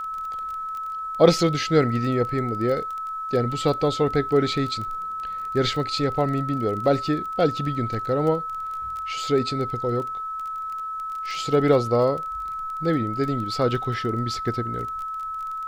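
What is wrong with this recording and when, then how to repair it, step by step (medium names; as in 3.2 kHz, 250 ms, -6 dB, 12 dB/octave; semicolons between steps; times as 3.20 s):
crackle 23 per s -30 dBFS
whine 1.3 kHz -28 dBFS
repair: de-click; band-stop 1.3 kHz, Q 30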